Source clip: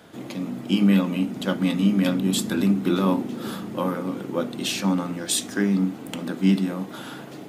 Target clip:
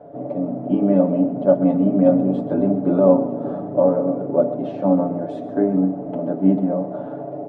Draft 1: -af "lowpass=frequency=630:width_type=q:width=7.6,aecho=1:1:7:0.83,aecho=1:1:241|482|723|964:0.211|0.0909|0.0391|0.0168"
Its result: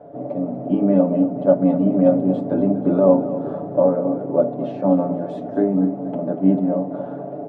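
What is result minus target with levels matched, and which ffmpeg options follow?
echo 113 ms late
-af "lowpass=frequency=630:width_type=q:width=7.6,aecho=1:1:7:0.83,aecho=1:1:128|256|384|512:0.211|0.0909|0.0391|0.0168"

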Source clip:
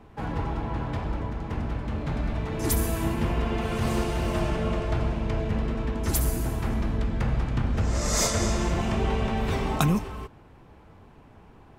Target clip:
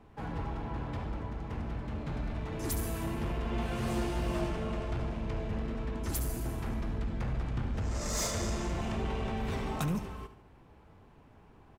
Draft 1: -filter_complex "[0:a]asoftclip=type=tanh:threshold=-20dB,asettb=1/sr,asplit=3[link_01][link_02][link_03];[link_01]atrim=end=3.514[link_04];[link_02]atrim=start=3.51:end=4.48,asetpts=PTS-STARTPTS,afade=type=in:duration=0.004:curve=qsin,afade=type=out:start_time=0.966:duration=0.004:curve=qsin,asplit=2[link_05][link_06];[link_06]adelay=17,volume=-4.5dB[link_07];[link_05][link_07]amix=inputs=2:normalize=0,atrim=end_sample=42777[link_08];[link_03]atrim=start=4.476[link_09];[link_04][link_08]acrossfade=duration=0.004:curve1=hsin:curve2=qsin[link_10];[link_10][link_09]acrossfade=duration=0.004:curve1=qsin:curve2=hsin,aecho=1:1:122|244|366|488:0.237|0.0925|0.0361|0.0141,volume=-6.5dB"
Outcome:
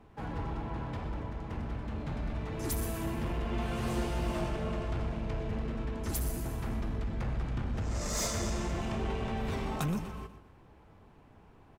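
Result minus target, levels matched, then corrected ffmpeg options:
echo 50 ms late
-filter_complex "[0:a]asoftclip=type=tanh:threshold=-20dB,asettb=1/sr,asplit=3[link_01][link_02][link_03];[link_01]atrim=end=3.514[link_04];[link_02]atrim=start=3.51:end=4.48,asetpts=PTS-STARTPTS,afade=type=in:duration=0.004:curve=qsin,afade=type=out:start_time=0.966:duration=0.004:curve=qsin,asplit=2[link_05][link_06];[link_06]adelay=17,volume=-4.5dB[link_07];[link_05][link_07]amix=inputs=2:normalize=0,atrim=end_sample=42777[link_08];[link_03]atrim=start=4.476[link_09];[link_04][link_08]acrossfade=duration=0.004:curve1=hsin:curve2=qsin[link_10];[link_10][link_09]acrossfade=duration=0.004:curve1=qsin:curve2=hsin,aecho=1:1:72|144|216|288:0.237|0.0925|0.0361|0.0141,volume=-6.5dB"

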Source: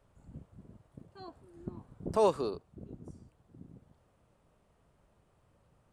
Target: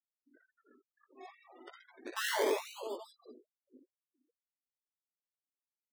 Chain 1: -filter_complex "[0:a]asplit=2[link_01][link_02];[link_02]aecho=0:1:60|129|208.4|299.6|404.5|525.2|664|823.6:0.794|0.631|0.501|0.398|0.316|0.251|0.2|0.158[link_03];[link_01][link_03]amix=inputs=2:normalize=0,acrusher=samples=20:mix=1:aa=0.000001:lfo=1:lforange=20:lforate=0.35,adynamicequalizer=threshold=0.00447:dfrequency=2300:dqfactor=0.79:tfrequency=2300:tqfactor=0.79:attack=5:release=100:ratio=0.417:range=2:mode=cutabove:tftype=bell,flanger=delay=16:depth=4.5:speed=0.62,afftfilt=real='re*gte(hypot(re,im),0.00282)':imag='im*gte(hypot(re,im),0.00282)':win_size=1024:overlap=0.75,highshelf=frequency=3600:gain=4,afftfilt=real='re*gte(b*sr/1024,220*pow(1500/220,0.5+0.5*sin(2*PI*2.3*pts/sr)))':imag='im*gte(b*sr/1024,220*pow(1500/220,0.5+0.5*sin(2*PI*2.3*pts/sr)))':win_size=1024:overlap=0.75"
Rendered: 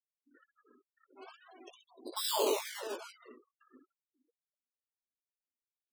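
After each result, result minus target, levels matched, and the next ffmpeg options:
8,000 Hz band +3.5 dB; sample-and-hold swept by an LFO: distortion −4 dB
-filter_complex "[0:a]asplit=2[link_01][link_02];[link_02]aecho=0:1:60|129|208.4|299.6|404.5|525.2|664|823.6:0.794|0.631|0.501|0.398|0.316|0.251|0.2|0.158[link_03];[link_01][link_03]amix=inputs=2:normalize=0,acrusher=samples=20:mix=1:aa=0.000001:lfo=1:lforange=20:lforate=0.35,adynamicequalizer=threshold=0.00447:dfrequency=2300:dqfactor=0.79:tfrequency=2300:tqfactor=0.79:attack=5:release=100:ratio=0.417:range=2:mode=cutabove:tftype=bell,flanger=delay=16:depth=4.5:speed=0.62,afftfilt=real='re*gte(hypot(re,im),0.00282)':imag='im*gte(hypot(re,im),0.00282)':win_size=1024:overlap=0.75,highshelf=frequency=3600:gain=-4,afftfilt=real='re*gte(b*sr/1024,220*pow(1500/220,0.5+0.5*sin(2*PI*2.3*pts/sr)))':imag='im*gte(b*sr/1024,220*pow(1500/220,0.5+0.5*sin(2*PI*2.3*pts/sr)))':win_size=1024:overlap=0.75"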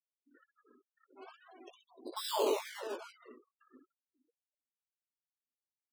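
sample-and-hold swept by an LFO: distortion −4 dB
-filter_complex "[0:a]asplit=2[link_01][link_02];[link_02]aecho=0:1:60|129|208.4|299.6|404.5|525.2|664|823.6:0.794|0.631|0.501|0.398|0.316|0.251|0.2|0.158[link_03];[link_01][link_03]amix=inputs=2:normalize=0,acrusher=samples=20:mix=1:aa=0.000001:lfo=1:lforange=20:lforate=0.23,adynamicequalizer=threshold=0.00447:dfrequency=2300:dqfactor=0.79:tfrequency=2300:tqfactor=0.79:attack=5:release=100:ratio=0.417:range=2:mode=cutabove:tftype=bell,flanger=delay=16:depth=4.5:speed=0.62,afftfilt=real='re*gte(hypot(re,im),0.00282)':imag='im*gte(hypot(re,im),0.00282)':win_size=1024:overlap=0.75,highshelf=frequency=3600:gain=-4,afftfilt=real='re*gte(b*sr/1024,220*pow(1500/220,0.5+0.5*sin(2*PI*2.3*pts/sr)))':imag='im*gte(b*sr/1024,220*pow(1500/220,0.5+0.5*sin(2*PI*2.3*pts/sr)))':win_size=1024:overlap=0.75"

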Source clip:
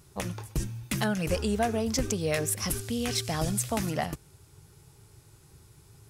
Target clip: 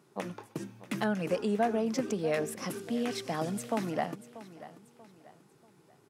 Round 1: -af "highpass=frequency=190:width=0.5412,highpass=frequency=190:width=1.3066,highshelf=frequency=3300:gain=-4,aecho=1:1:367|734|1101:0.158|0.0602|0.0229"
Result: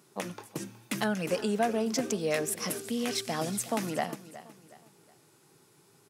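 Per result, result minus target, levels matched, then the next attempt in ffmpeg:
echo 270 ms early; 8,000 Hz band +8.0 dB
-af "highpass=frequency=190:width=0.5412,highpass=frequency=190:width=1.3066,highshelf=frequency=3300:gain=-4,aecho=1:1:637|1274|1911:0.158|0.0602|0.0229"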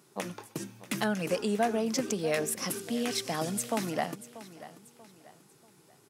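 8,000 Hz band +8.0 dB
-af "highpass=frequency=190:width=0.5412,highpass=frequency=190:width=1.3066,highshelf=frequency=3300:gain=-15,aecho=1:1:637|1274|1911:0.158|0.0602|0.0229"

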